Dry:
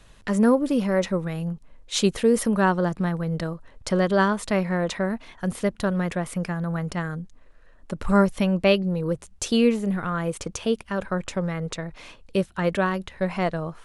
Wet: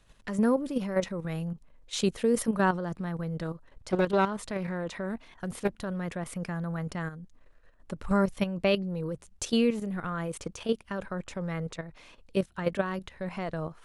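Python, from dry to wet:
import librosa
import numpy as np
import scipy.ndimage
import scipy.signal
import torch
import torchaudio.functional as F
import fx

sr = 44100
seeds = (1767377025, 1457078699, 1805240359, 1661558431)

y = fx.level_steps(x, sr, step_db=10)
y = fx.doppler_dist(y, sr, depth_ms=0.25, at=(3.41, 5.76))
y = F.gain(torch.from_numpy(y), -2.5).numpy()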